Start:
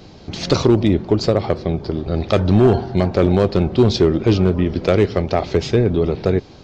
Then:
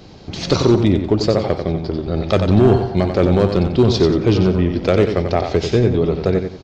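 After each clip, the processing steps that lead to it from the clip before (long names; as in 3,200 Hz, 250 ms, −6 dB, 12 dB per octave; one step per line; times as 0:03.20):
repeating echo 91 ms, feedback 31%, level −7 dB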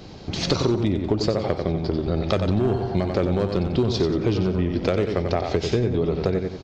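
downward compressor, threshold −18 dBFS, peak gain reduction 10.5 dB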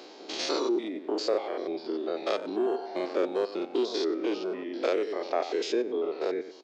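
spectrum averaged block by block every 100 ms
Butterworth high-pass 300 Hz 36 dB per octave
reverb reduction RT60 1.1 s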